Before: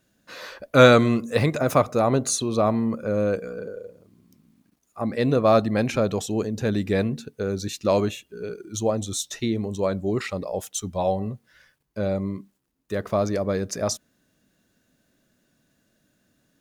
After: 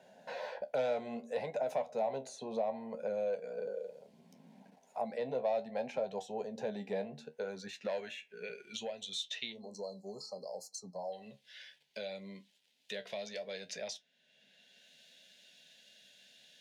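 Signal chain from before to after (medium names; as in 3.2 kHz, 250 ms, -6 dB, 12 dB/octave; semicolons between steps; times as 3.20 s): saturation -11 dBFS, distortion -15 dB; spectral selection erased 9.53–11.13 s, 1.3–4.1 kHz; flange 0.65 Hz, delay 10 ms, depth 5.7 ms, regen +54%; in parallel at 0 dB: compression, threshold -32 dBFS, peak gain reduction 14 dB; on the sum: band-pass sweep 880 Hz -> 3.4 kHz, 7.10–9.14 s; static phaser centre 320 Hz, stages 6; three bands compressed up and down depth 70%; trim +1 dB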